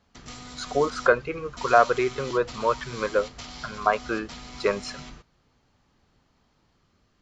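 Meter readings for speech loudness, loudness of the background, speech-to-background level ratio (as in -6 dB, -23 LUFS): -25.5 LUFS, -40.5 LUFS, 15.0 dB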